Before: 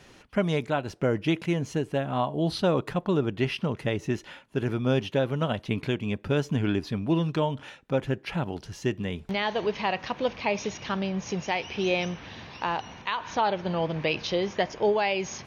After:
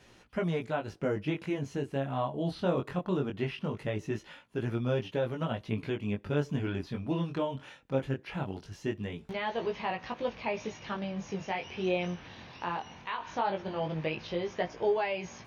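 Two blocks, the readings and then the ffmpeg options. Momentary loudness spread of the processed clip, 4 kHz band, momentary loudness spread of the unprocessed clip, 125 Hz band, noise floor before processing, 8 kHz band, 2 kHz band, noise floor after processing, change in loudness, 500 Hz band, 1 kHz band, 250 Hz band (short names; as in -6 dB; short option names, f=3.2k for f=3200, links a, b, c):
7 LU, -9.0 dB, 6 LU, -5.5 dB, -53 dBFS, -11.0 dB, -6.5 dB, -58 dBFS, -5.5 dB, -5.0 dB, -5.5 dB, -6.0 dB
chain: -filter_complex "[0:a]acrossover=split=2900[a][b];[b]acompressor=threshold=-45dB:ratio=4:attack=1:release=60[c];[a][c]amix=inputs=2:normalize=0,flanger=delay=17:depth=5.8:speed=0.2,volume=-2.5dB"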